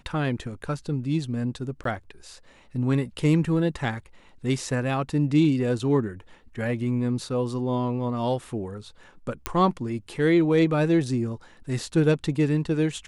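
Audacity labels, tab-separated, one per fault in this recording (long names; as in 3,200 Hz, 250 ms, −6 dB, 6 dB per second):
1.840000	1.850000	drop-out
9.460000	9.460000	click −9 dBFS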